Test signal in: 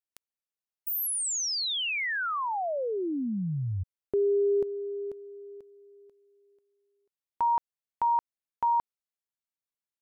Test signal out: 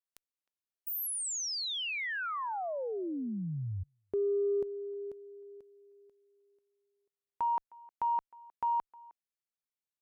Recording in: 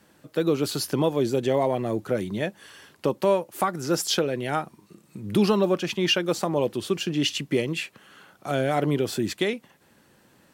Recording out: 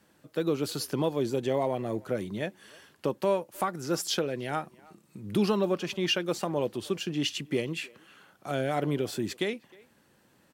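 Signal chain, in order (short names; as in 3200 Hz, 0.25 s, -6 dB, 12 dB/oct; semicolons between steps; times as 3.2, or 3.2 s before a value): added harmonics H 7 -41 dB, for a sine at -9.5 dBFS; speakerphone echo 0.31 s, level -23 dB; gain -5 dB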